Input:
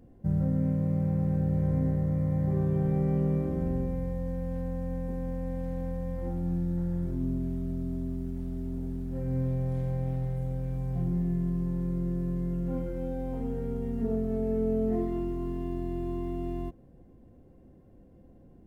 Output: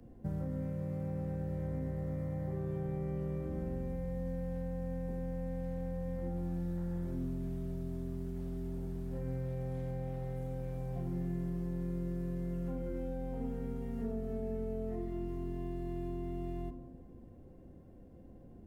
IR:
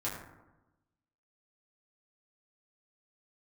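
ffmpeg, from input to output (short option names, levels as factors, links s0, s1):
-filter_complex "[0:a]acrossover=split=140|320|1000[s0][s1][s2][s3];[s0]acompressor=threshold=0.00794:ratio=4[s4];[s1]acompressor=threshold=0.00708:ratio=4[s5];[s2]acompressor=threshold=0.00562:ratio=4[s6];[s3]acompressor=threshold=0.001:ratio=4[s7];[s4][s5][s6][s7]amix=inputs=4:normalize=0,asplit=2[s8][s9];[1:a]atrim=start_sample=2205,asetrate=33075,aresample=44100,adelay=35[s10];[s9][s10]afir=irnorm=-1:irlink=0,volume=0.158[s11];[s8][s11]amix=inputs=2:normalize=0"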